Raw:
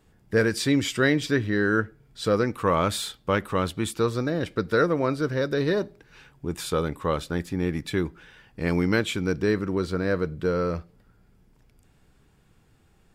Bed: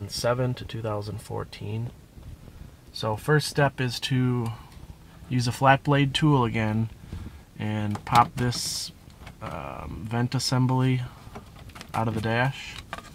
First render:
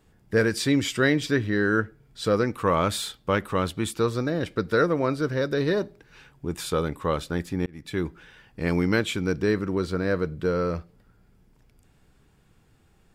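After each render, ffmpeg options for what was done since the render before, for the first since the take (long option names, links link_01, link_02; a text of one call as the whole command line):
ffmpeg -i in.wav -filter_complex "[0:a]asplit=2[link_01][link_02];[link_01]atrim=end=7.66,asetpts=PTS-STARTPTS,afade=type=out:start_time=7.656:duration=0.004:curve=hsin[link_03];[link_02]atrim=start=7.66,asetpts=PTS-STARTPTS,afade=type=in:duration=0.41[link_04];[link_03][link_04]concat=n=2:v=0:a=1" out.wav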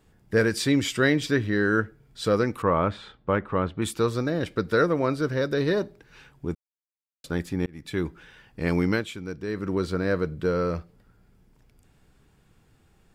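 ffmpeg -i in.wav -filter_complex "[0:a]asettb=1/sr,asplit=3[link_01][link_02][link_03];[link_01]atrim=end=2.624[link_04];[link_02]atrim=start=2.62:end=3.82,asetpts=PTS-STARTPTS,afade=type=in:duration=0.004:curve=qsin,afade=type=out:start_time=1.196:duration=0.004:curve=qsin,lowpass=1800[link_05];[link_03]atrim=start=3.816[link_06];[link_04][link_05]acrossfade=duration=0.004:curve1=hsin:curve2=qsin[link_07];[link_07][link_06]acrossfade=duration=0.004:curve1=qsin:curve2=hsin,asplit=5[link_08][link_09][link_10][link_11][link_12];[link_08]atrim=end=6.55,asetpts=PTS-STARTPTS,afade=type=out:start_time=6.546:duration=0.004:curve=hsin[link_13];[link_09]atrim=start=6.55:end=7.24,asetpts=PTS-STARTPTS,volume=0[link_14];[link_10]atrim=start=7.24:end=9.15,asetpts=PTS-STARTPTS,afade=type=in:duration=0.004:curve=hsin,afade=type=out:start_time=1.66:duration=0.25:curve=qua:silence=0.354813[link_15];[link_11]atrim=start=9.15:end=9.43,asetpts=PTS-STARTPTS,volume=-9dB[link_16];[link_12]atrim=start=9.43,asetpts=PTS-STARTPTS,afade=type=in:duration=0.25:curve=qua:silence=0.354813[link_17];[link_13][link_14][link_15][link_16][link_17]concat=n=5:v=0:a=1" out.wav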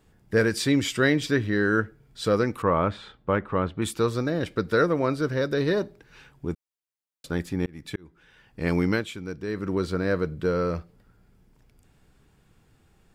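ffmpeg -i in.wav -filter_complex "[0:a]asplit=2[link_01][link_02];[link_01]atrim=end=7.96,asetpts=PTS-STARTPTS,afade=type=out:start_time=7.956:duration=0.004:curve=hsin[link_03];[link_02]atrim=start=7.96,asetpts=PTS-STARTPTS,afade=type=in:duration=0.71[link_04];[link_03][link_04]concat=n=2:v=0:a=1" out.wav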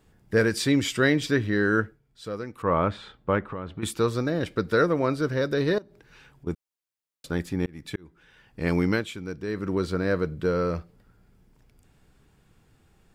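ffmpeg -i in.wav -filter_complex "[0:a]asettb=1/sr,asplit=3[link_01][link_02][link_03];[link_01]atrim=end=3.434[link_04];[link_02]atrim=start=3.43:end=3.83,asetpts=PTS-STARTPTS,afade=type=in:duration=0.004:curve=qsin,afade=type=out:start_time=0.396:duration=0.004:curve=qsin,acompressor=threshold=-30dB:ratio=6:attack=3.2:release=140:knee=1:detection=peak[link_05];[link_03]atrim=start=3.826[link_06];[link_04][link_05]acrossfade=duration=0.004:curve1=hsin:curve2=qsin[link_07];[link_07][link_06]acrossfade=duration=0.004:curve1=qsin:curve2=hsin,asettb=1/sr,asplit=3[link_08][link_09][link_10];[link_08]atrim=end=5.784[link_11];[link_09]atrim=start=5.78:end=6.47,asetpts=PTS-STARTPTS,afade=type=in:duration=0.004:curve=qsin,afade=type=out:start_time=0.686:duration=0.004:curve=qsin,acompressor=threshold=-48dB:ratio=3:attack=3.2:release=140:knee=1:detection=peak[link_12];[link_10]atrim=start=6.466[link_13];[link_11][link_12]acrossfade=duration=0.004:curve1=hsin:curve2=qsin[link_14];[link_14][link_13]acrossfade=duration=0.004:curve1=qsin:curve2=hsin,asplit=3[link_15][link_16][link_17];[link_15]atrim=end=2.01,asetpts=PTS-STARTPTS,afade=type=out:start_time=1.84:duration=0.17:silence=0.281838[link_18];[link_16]atrim=start=2.01:end=2.56,asetpts=PTS-STARTPTS,volume=-11dB[link_19];[link_17]atrim=start=2.56,asetpts=PTS-STARTPTS,afade=type=in:duration=0.17:silence=0.281838[link_20];[link_18][link_19][link_20]concat=n=3:v=0:a=1" out.wav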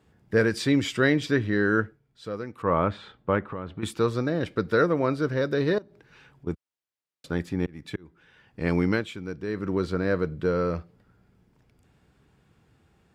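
ffmpeg -i in.wav -af "highpass=61,highshelf=frequency=6600:gain=-10" out.wav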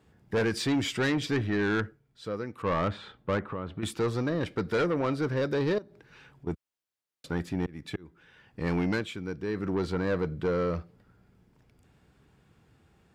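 ffmpeg -i in.wav -af "asoftclip=type=tanh:threshold=-22dB" out.wav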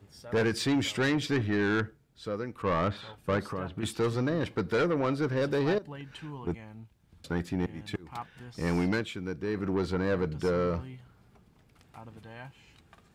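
ffmpeg -i in.wav -i bed.wav -filter_complex "[1:a]volume=-21.5dB[link_01];[0:a][link_01]amix=inputs=2:normalize=0" out.wav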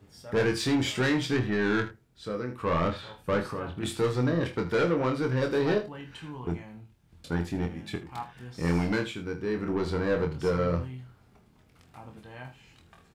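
ffmpeg -i in.wav -filter_complex "[0:a]asplit=2[link_01][link_02];[link_02]adelay=24,volume=-5dB[link_03];[link_01][link_03]amix=inputs=2:normalize=0,aecho=1:1:47|79:0.211|0.188" out.wav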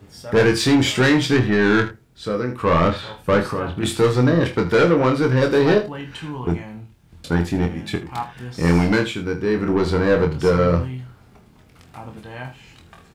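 ffmpeg -i in.wav -af "volume=10dB" out.wav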